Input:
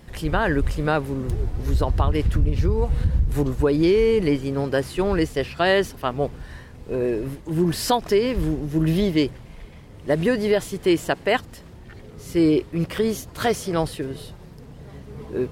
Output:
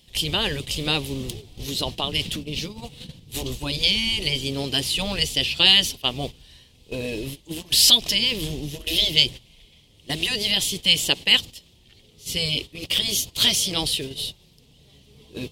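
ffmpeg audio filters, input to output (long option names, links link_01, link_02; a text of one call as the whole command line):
ffmpeg -i in.wav -af "afftfilt=real='re*lt(hypot(re,im),0.562)':imag='im*lt(hypot(re,im),0.562)':win_size=1024:overlap=0.75,highshelf=frequency=2200:width_type=q:width=3:gain=13,agate=range=-12dB:threshold=-28dB:ratio=16:detection=peak,volume=-2.5dB" out.wav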